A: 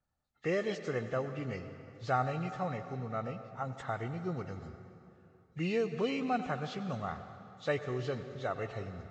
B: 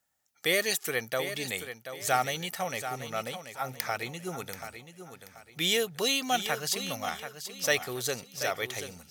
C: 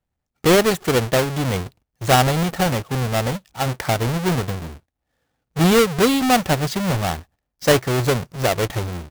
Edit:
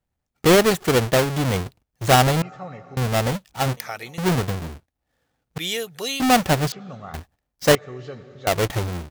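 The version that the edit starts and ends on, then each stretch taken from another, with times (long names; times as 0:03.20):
C
0:02.42–0:02.97: punch in from A
0:03.77–0:04.18: punch in from B
0:05.58–0:06.20: punch in from B
0:06.72–0:07.14: punch in from A
0:07.75–0:08.47: punch in from A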